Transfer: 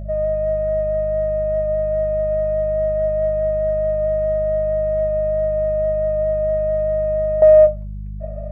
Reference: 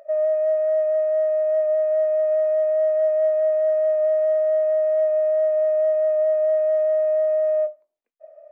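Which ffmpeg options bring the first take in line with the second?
-af "bandreject=f=50.7:t=h:w=4,bandreject=f=101.4:t=h:w=4,bandreject=f=152.1:t=h:w=4,bandreject=f=202.8:t=h:w=4,asetnsamples=n=441:p=0,asendcmd='7.42 volume volume -12dB',volume=1"

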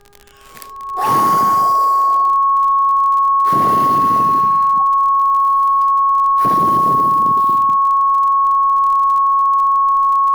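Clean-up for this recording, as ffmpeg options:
-af "adeclick=t=4,bandreject=f=406.1:t=h:w=4,bandreject=f=812.2:t=h:w=4,bandreject=f=1218.3:t=h:w=4,bandreject=f=1624.4:t=h:w=4,bandreject=f=1100:w=30,agate=range=0.0891:threshold=0.398"

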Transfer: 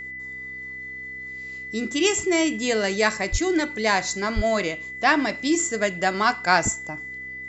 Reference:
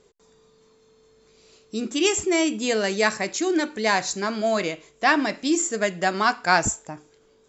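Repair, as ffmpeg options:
-filter_complex "[0:a]bandreject=f=64.9:t=h:w=4,bandreject=f=129.8:t=h:w=4,bandreject=f=194.7:t=h:w=4,bandreject=f=259.6:t=h:w=4,bandreject=f=324.5:t=h:w=4,bandreject=f=2000:w=30,asplit=3[s0][s1][s2];[s0]afade=t=out:st=3.31:d=0.02[s3];[s1]highpass=f=140:w=0.5412,highpass=f=140:w=1.3066,afade=t=in:st=3.31:d=0.02,afade=t=out:st=3.43:d=0.02[s4];[s2]afade=t=in:st=3.43:d=0.02[s5];[s3][s4][s5]amix=inputs=3:normalize=0,asplit=3[s6][s7][s8];[s6]afade=t=out:st=4.35:d=0.02[s9];[s7]highpass=f=140:w=0.5412,highpass=f=140:w=1.3066,afade=t=in:st=4.35:d=0.02,afade=t=out:st=4.47:d=0.02[s10];[s8]afade=t=in:st=4.47:d=0.02[s11];[s9][s10][s11]amix=inputs=3:normalize=0"

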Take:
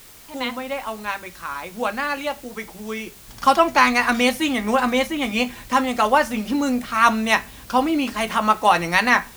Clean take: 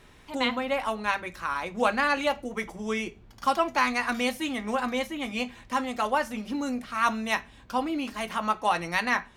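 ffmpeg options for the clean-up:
-af "afwtdn=0.005,asetnsamples=n=441:p=0,asendcmd='3.28 volume volume -9dB',volume=1"

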